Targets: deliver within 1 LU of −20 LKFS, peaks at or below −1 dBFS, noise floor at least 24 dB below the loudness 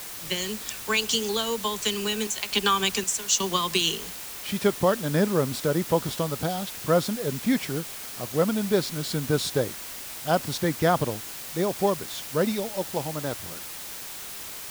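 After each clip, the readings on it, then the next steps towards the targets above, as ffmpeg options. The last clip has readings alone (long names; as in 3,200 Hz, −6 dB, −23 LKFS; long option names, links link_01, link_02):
background noise floor −38 dBFS; target noise floor −51 dBFS; integrated loudness −26.5 LKFS; sample peak −8.0 dBFS; target loudness −20.0 LKFS
→ -af "afftdn=noise_reduction=13:noise_floor=-38"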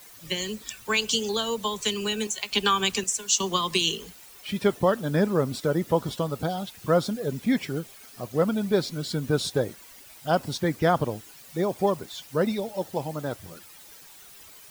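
background noise floor −49 dBFS; target noise floor −51 dBFS
→ -af "afftdn=noise_reduction=6:noise_floor=-49"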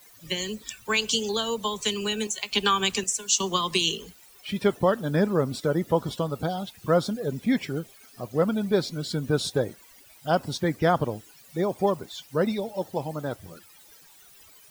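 background noise floor −53 dBFS; integrated loudness −26.5 LKFS; sample peak −8.0 dBFS; target loudness −20.0 LKFS
→ -af "volume=6.5dB"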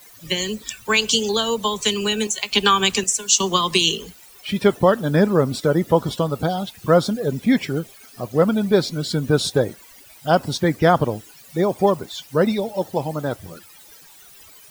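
integrated loudness −20.0 LKFS; sample peak −1.5 dBFS; background noise floor −47 dBFS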